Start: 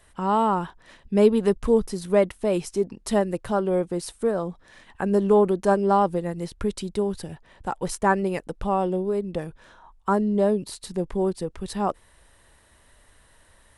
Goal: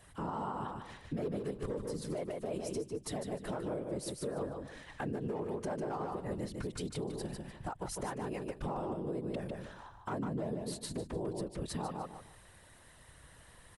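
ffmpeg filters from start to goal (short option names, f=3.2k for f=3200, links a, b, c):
-af "acompressor=threshold=-27dB:ratio=2,volume=19dB,asoftclip=hard,volume=-19dB,afftfilt=real='hypot(re,im)*cos(2*PI*random(0))':imag='hypot(re,im)*sin(2*PI*random(1))':win_size=512:overlap=0.75,aecho=1:1:150|300|450:0.501|0.11|0.0243,alimiter=level_in=8.5dB:limit=-24dB:level=0:latency=1:release=353,volume=-8.5dB,volume=4dB"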